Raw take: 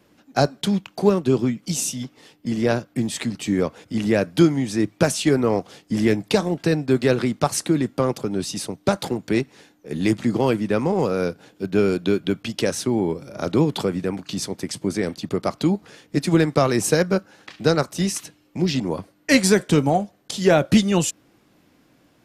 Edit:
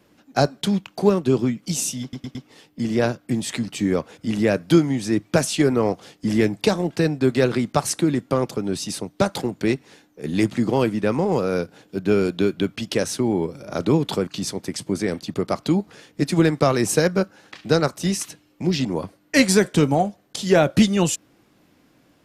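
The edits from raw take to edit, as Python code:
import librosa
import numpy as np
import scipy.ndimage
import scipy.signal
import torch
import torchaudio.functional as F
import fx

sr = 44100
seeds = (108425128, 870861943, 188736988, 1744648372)

y = fx.edit(x, sr, fx.stutter(start_s=2.02, slice_s=0.11, count=4),
    fx.cut(start_s=13.94, length_s=0.28), tone=tone)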